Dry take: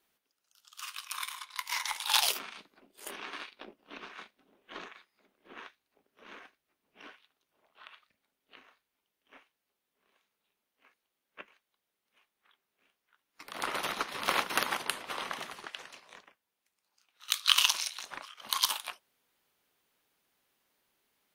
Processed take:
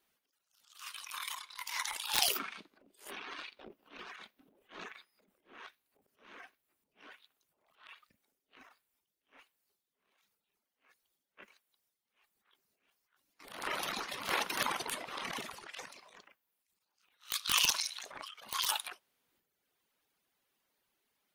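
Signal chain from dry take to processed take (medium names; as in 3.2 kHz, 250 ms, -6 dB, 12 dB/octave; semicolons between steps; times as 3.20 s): integer overflow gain 11.5 dB; reverb removal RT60 0.92 s; transient shaper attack -8 dB, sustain +11 dB; trim -2 dB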